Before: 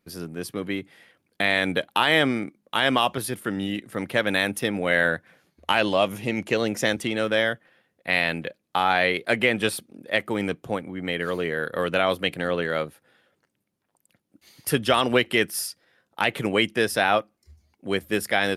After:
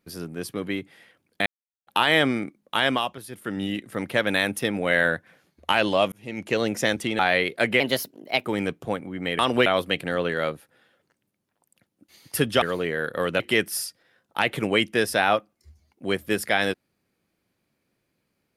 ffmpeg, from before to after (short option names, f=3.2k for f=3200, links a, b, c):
-filter_complex "[0:a]asplit=13[a][b][c][d][e][f][g][h][i][j][k][l][m];[a]atrim=end=1.46,asetpts=PTS-STARTPTS,afade=t=out:st=1.456:d=0.004:c=hsin[n];[b]atrim=start=1.46:end=1.87,asetpts=PTS-STARTPTS,volume=0[o];[c]atrim=start=1.87:end=3.17,asetpts=PTS-STARTPTS,afade=t=in:d=0.004:c=hsin,afade=t=out:st=0.95:d=0.35:silence=0.281838[p];[d]atrim=start=3.17:end=3.28,asetpts=PTS-STARTPTS,volume=-11dB[q];[e]atrim=start=3.28:end=6.12,asetpts=PTS-STARTPTS,afade=t=in:d=0.35:silence=0.281838,afade=t=out:st=2.836:d=0.004:c=hsin[r];[f]atrim=start=6.12:end=7.192,asetpts=PTS-STARTPTS,afade=t=in:d=0.46[s];[g]atrim=start=8.878:end=9.494[t];[h]atrim=start=9.49:end=10.27,asetpts=PTS-STARTPTS,asetrate=52920,aresample=44100[u];[i]atrim=start=10.266:end=11.212[v];[j]atrim=start=14.948:end=15.222[w];[k]atrim=start=11.988:end=14.952[x];[l]atrim=start=11.208:end=11.992[y];[m]atrim=start=15.218[z];[n][o][p][q][r][s]concat=n=6:v=0:a=1[aa];[aa][t]acrossfade=d=0.004:c1=hsin:c2=hsin[ab];[ab][u]acrossfade=d=0.004:c1=hsin:c2=hsin[ac];[ac][v]acrossfade=d=0.004:c1=hsin:c2=hsin[ad];[ad][w]acrossfade=d=0.004:c1=hsin:c2=hsin[ae];[ae][x]acrossfade=d=0.004:c1=hsin:c2=hsin[af];[af][y]acrossfade=d=0.004:c1=hsin:c2=hsin[ag];[ag][z]acrossfade=d=0.004:c1=hsin:c2=hsin"